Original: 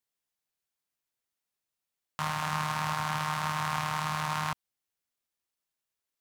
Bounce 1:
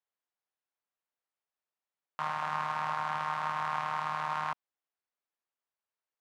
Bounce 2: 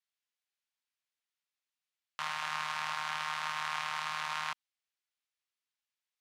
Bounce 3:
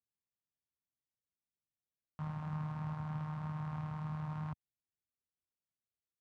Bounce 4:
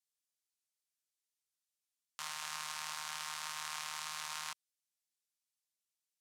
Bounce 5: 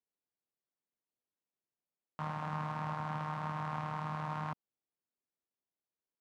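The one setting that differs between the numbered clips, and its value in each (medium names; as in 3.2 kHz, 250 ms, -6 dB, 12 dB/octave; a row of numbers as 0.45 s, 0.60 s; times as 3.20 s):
band-pass filter, frequency: 890 Hz, 2.7 kHz, 100 Hz, 7.3 kHz, 310 Hz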